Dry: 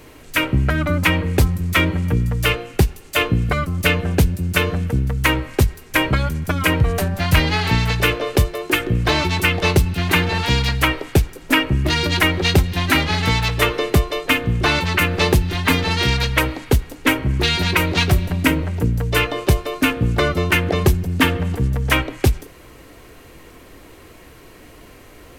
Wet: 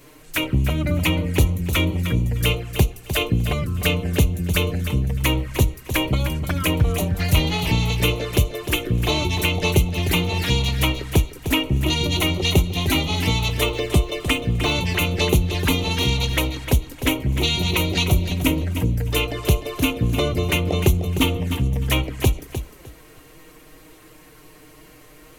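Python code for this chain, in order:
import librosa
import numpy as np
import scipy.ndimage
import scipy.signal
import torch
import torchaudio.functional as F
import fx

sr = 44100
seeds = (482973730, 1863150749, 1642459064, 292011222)

p1 = fx.high_shelf(x, sr, hz=6300.0, db=7.0)
p2 = fx.env_flanger(p1, sr, rest_ms=8.0, full_db=-15.0)
p3 = p2 + fx.echo_feedback(p2, sr, ms=304, feedback_pct=20, wet_db=-10.0, dry=0)
p4 = fx.resample_linear(p3, sr, factor=2, at=(13.64, 14.72))
y = F.gain(torch.from_numpy(p4), -2.0).numpy()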